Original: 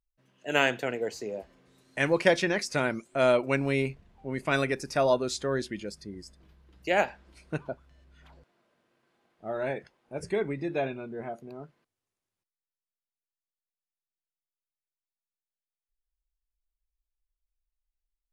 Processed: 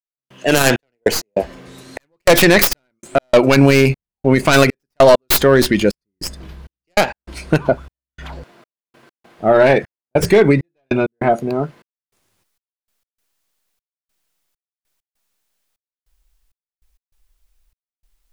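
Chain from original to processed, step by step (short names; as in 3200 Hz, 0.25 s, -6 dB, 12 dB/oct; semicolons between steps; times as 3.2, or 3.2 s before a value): tracing distortion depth 0.43 ms; in parallel at -9 dB: wavefolder -20.5 dBFS; 6.94–7.65 on the sum: compressor 6:1, threshold -30 dBFS, peak gain reduction 11.5 dB; step gate "..xxx..x.xxxx" 99 bpm -60 dB; maximiser +21.5 dB; gain -1 dB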